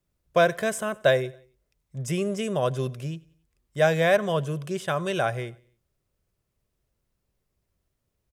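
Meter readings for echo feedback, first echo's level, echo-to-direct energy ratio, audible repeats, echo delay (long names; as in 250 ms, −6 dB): 46%, −23.5 dB, −22.5 dB, 2, 92 ms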